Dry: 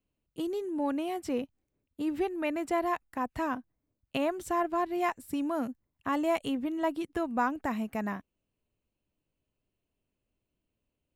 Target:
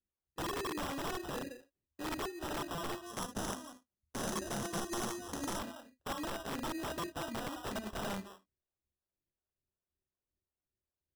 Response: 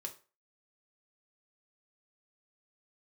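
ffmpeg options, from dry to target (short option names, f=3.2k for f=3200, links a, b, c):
-filter_complex "[0:a]agate=range=-13dB:threshold=-57dB:ratio=16:detection=peak,asplit=2[a][b];[b]adelay=180,highpass=300,lowpass=3.4k,asoftclip=type=hard:threshold=-25.5dB,volume=-15dB[c];[a][c]amix=inputs=2:normalize=0[d];[1:a]atrim=start_sample=2205,atrim=end_sample=3528[e];[d][e]afir=irnorm=-1:irlink=0,acrossover=split=650[f][g];[f]aeval=exprs='val(0)*(1-0.7/2+0.7/2*cos(2*PI*2.7*n/s))':c=same[h];[g]aeval=exprs='val(0)*(1-0.7/2-0.7/2*cos(2*PI*2.7*n/s))':c=same[i];[h][i]amix=inputs=2:normalize=0,acrusher=samples=20:mix=1:aa=0.000001,acompressor=threshold=-38dB:ratio=12,equalizer=f=74:t=o:w=0.31:g=10.5,aeval=exprs='(mod(79.4*val(0)+1,2)-1)/79.4':c=same,asettb=1/sr,asplit=3[j][k][l];[j]atrim=end=3.064[m];[k]atrim=start=3.06:end=5.59,asetpts=PTS-STARTPTS,afade=t=in:d=0.004:c=qsin,afade=t=out:st=2.526:d=0.004:c=qsin,equalizer=f=200:t=o:w=0.33:g=9,equalizer=f=2.5k:t=o:w=0.33:g=-4,equalizer=f=6.3k:t=o:w=0.33:g=11,equalizer=f=10k:t=o:w=0.33:g=9[n];[l]atrim=start=5.586[o];[m][n]acrossfade=d=0.004:c1=hsin:c2=qsin[p];[p][o]acrossfade=d=0.004:c1=qsin:c2=hsin,volume=4.5dB"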